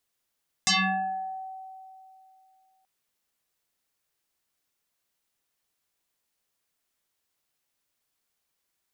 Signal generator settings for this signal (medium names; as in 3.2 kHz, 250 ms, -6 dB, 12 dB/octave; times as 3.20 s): FM tone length 2.18 s, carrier 760 Hz, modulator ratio 1.25, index 8.1, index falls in 0.79 s exponential, decay 2.72 s, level -18.5 dB